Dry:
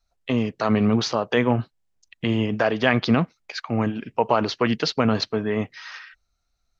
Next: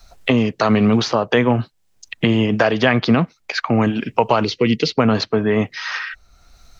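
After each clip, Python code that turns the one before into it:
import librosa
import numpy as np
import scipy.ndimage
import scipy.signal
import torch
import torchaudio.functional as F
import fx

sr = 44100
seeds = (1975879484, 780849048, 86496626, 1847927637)

y = fx.spec_box(x, sr, start_s=4.44, length_s=0.52, low_hz=510.0, high_hz=1900.0, gain_db=-14)
y = fx.band_squash(y, sr, depth_pct=70)
y = y * 10.0 ** (5.0 / 20.0)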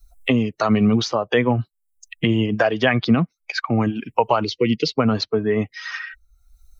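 y = fx.bin_expand(x, sr, power=1.5)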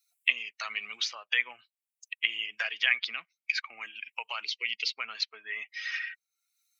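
y = fx.highpass_res(x, sr, hz=2300.0, q=2.9)
y = y * 10.0 ** (-7.5 / 20.0)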